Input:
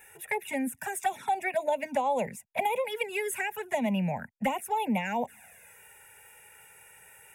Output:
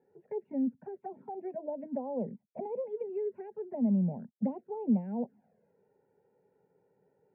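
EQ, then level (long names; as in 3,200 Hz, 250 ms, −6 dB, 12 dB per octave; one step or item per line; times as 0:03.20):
flat-topped band-pass 280 Hz, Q 1.2
high-frequency loss of the air 410 metres
parametric band 300 Hz −4 dB 0.82 octaves
+5.5 dB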